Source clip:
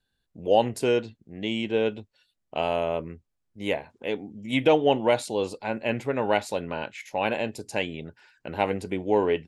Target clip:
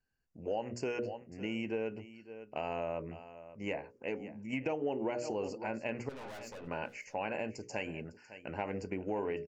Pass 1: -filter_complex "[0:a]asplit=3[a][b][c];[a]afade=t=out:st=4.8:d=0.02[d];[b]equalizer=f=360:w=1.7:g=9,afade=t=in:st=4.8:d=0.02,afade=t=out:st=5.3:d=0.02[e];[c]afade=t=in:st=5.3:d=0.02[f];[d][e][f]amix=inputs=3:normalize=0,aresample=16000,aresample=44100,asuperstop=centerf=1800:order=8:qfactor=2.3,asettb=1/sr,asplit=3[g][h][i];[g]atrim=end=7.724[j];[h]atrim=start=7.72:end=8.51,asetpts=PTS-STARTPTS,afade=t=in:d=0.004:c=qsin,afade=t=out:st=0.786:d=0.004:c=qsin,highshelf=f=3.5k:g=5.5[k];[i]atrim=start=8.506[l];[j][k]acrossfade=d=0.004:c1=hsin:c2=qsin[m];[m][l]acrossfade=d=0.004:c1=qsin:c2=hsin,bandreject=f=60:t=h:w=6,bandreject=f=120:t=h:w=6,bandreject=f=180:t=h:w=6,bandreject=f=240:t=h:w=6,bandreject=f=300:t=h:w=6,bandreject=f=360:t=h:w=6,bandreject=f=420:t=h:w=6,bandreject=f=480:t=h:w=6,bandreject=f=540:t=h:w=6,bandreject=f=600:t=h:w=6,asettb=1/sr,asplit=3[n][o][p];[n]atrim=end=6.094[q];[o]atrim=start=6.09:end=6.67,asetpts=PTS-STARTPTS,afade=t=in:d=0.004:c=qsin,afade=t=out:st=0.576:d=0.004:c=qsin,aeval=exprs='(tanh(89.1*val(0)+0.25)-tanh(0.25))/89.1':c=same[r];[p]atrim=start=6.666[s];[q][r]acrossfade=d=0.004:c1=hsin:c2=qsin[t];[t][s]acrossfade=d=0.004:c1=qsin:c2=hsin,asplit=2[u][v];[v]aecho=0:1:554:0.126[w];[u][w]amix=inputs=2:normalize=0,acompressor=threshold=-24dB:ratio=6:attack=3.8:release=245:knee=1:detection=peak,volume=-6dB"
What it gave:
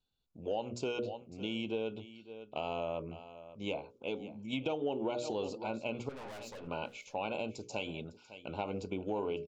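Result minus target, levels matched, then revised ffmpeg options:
4000 Hz band +6.5 dB
-filter_complex "[0:a]asplit=3[a][b][c];[a]afade=t=out:st=4.8:d=0.02[d];[b]equalizer=f=360:w=1.7:g=9,afade=t=in:st=4.8:d=0.02,afade=t=out:st=5.3:d=0.02[e];[c]afade=t=in:st=5.3:d=0.02[f];[d][e][f]amix=inputs=3:normalize=0,aresample=16000,aresample=44100,asuperstop=centerf=3600:order=8:qfactor=2.3,asettb=1/sr,asplit=3[g][h][i];[g]atrim=end=7.724[j];[h]atrim=start=7.72:end=8.51,asetpts=PTS-STARTPTS,afade=t=in:d=0.004:c=qsin,afade=t=out:st=0.786:d=0.004:c=qsin,highshelf=f=3.5k:g=5.5[k];[i]atrim=start=8.506[l];[j][k]acrossfade=d=0.004:c1=hsin:c2=qsin[m];[m][l]acrossfade=d=0.004:c1=qsin:c2=hsin,bandreject=f=60:t=h:w=6,bandreject=f=120:t=h:w=6,bandreject=f=180:t=h:w=6,bandreject=f=240:t=h:w=6,bandreject=f=300:t=h:w=6,bandreject=f=360:t=h:w=6,bandreject=f=420:t=h:w=6,bandreject=f=480:t=h:w=6,bandreject=f=540:t=h:w=6,bandreject=f=600:t=h:w=6,asettb=1/sr,asplit=3[n][o][p];[n]atrim=end=6.094[q];[o]atrim=start=6.09:end=6.67,asetpts=PTS-STARTPTS,afade=t=in:d=0.004:c=qsin,afade=t=out:st=0.576:d=0.004:c=qsin,aeval=exprs='(tanh(89.1*val(0)+0.25)-tanh(0.25))/89.1':c=same[r];[p]atrim=start=6.666[s];[q][r]acrossfade=d=0.004:c1=hsin:c2=qsin[t];[t][s]acrossfade=d=0.004:c1=qsin:c2=hsin,asplit=2[u][v];[v]aecho=0:1:554:0.126[w];[u][w]amix=inputs=2:normalize=0,acompressor=threshold=-24dB:ratio=6:attack=3.8:release=245:knee=1:detection=peak,volume=-6dB"

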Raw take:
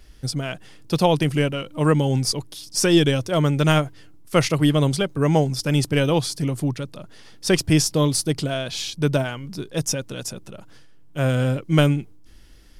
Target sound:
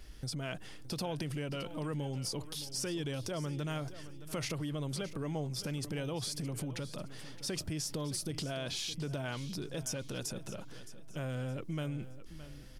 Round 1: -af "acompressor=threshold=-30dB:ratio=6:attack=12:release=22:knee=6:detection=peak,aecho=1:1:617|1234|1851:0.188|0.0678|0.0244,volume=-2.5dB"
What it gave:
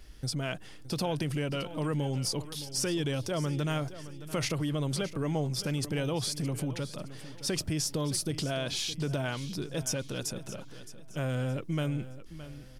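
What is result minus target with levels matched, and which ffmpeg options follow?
compressor: peak gain reduction -6 dB
-af "acompressor=threshold=-37.5dB:ratio=6:attack=12:release=22:knee=6:detection=peak,aecho=1:1:617|1234|1851:0.188|0.0678|0.0244,volume=-2.5dB"

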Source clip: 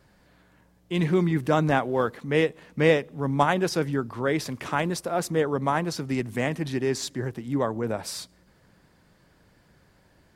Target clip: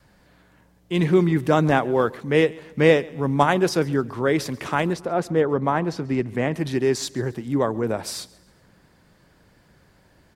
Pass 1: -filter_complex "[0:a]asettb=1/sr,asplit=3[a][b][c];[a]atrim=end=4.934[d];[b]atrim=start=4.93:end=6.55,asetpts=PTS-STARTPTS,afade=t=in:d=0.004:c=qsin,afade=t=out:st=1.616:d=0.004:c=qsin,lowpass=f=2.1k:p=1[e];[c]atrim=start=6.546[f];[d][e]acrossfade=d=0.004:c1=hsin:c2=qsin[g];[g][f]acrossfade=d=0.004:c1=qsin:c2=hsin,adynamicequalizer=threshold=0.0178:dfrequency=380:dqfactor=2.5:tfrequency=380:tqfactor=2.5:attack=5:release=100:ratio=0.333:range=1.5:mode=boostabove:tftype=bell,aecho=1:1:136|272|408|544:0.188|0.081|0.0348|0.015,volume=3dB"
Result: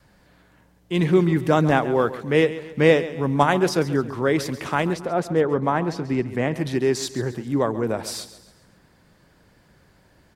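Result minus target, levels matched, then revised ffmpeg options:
echo-to-direct +8 dB
-filter_complex "[0:a]asettb=1/sr,asplit=3[a][b][c];[a]atrim=end=4.934[d];[b]atrim=start=4.93:end=6.55,asetpts=PTS-STARTPTS,afade=t=in:d=0.004:c=qsin,afade=t=out:st=1.616:d=0.004:c=qsin,lowpass=f=2.1k:p=1[e];[c]atrim=start=6.546[f];[d][e]acrossfade=d=0.004:c1=hsin:c2=qsin[g];[g][f]acrossfade=d=0.004:c1=qsin:c2=hsin,adynamicequalizer=threshold=0.0178:dfrequency=380:dqfactor=2.5:tfrequency=380:tqfactor=2.5:attack=5:release=100:ratio=0.333:range=1.5:mode=boostabove:tftype=bell,aecho=1:1:136|272|408:0.075|0.0322|0.0139,volume=3dB"

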